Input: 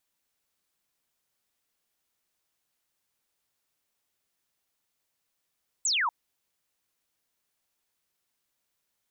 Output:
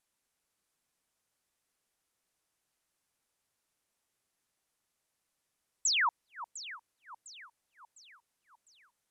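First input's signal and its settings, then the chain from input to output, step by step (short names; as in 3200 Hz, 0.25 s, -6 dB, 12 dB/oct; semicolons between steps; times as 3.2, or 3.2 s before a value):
laser zap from 8200 Hz, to 870 Hz, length 0.24 s sine, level -23.5 dB
LPF 12000 Hz 24 dB/oct; bell 3700 Hz -3 dB 1.4 oct; echo with dull and thin repeats by turns 0.352 s, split 1300 Hz, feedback 67%, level -11.5 dB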